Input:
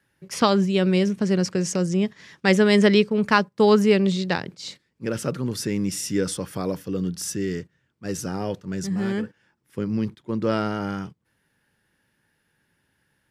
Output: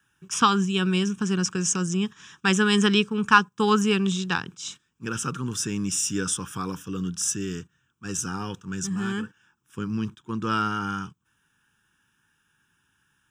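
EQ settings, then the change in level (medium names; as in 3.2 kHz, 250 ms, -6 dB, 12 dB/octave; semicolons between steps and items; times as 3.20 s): peaking EQ 1.4 kHz +7 dB 1.6 oct; treble shelf 4.5 kHz +12 dB; static phaser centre 3 kHz, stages 8; -2.0 dB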